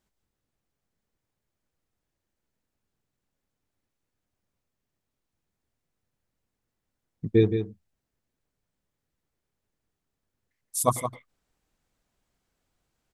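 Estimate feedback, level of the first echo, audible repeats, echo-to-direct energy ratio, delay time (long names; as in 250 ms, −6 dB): repeats not evenly spaced, −8.5 dB, 1, −8.5 dB, 169 ms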